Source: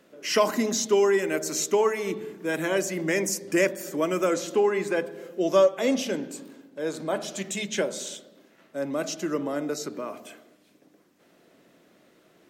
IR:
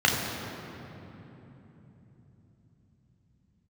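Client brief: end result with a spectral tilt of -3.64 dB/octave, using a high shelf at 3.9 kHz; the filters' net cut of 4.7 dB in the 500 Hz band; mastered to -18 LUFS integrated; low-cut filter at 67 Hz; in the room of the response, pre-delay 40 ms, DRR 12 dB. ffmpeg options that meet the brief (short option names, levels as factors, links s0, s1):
-filter_complex "[0:a]highpass=67,equalizer=f=500:t=o:g=-6,highshelf=f=3900:g=-4,asplit=2[s0][s1];[1:a]atrim=start_sample=2205,adelay=40[s2];[s1][s2]afir=irnorm=-1:irlink=0,volume=0.0355[s3];[s0][s3]amix=inputs=2:normalize=0,volume=3.76"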